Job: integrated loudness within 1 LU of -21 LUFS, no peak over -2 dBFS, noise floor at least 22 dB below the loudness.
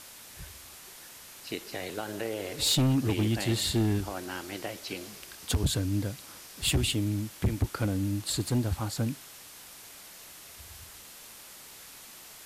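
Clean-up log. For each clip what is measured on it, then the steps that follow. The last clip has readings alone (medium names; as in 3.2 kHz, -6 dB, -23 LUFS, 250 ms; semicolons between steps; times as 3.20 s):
clipped samples 0.9%; clipping level -20.0 dBFS; noise floor -49 dBFS; noise floor target -52 dBFS; loudness -30.0 LUFS; peak level -20.0 dBFS; loudness target -21.0 LUFS
-> clip repair -20 dBFS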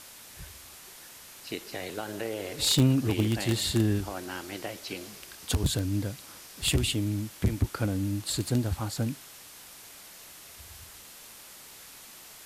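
clipped samples 0.0%; noise floor -49 dBFS; noise floor target -52 dBFS
-> noise reduction 6 dB, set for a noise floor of -49 dBFS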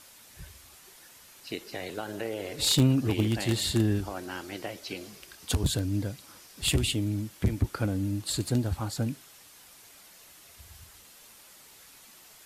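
noise floor -54 dBFS; loudness -29.5 LUFS; peak level -11.0 dBFS; loudness target -21.0 LUFS
-> trim +8.5 dB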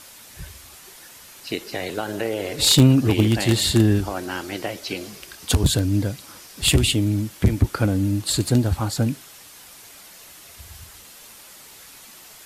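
loudness -21.0 LUFS; peak level -2.5 dBFS; noise floor -45 dBFS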